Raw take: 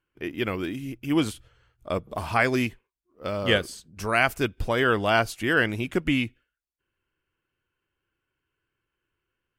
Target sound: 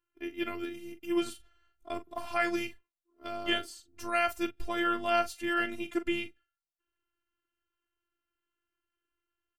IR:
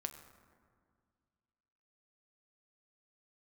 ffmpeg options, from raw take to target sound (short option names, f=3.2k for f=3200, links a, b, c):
-af "afftfilt=real='hypot(re,im)*cos(PI*b)':imag='0':win_size=512:overlap=0.75,aecho=1:1:21|42:0.168|0.224,volume=-4dB"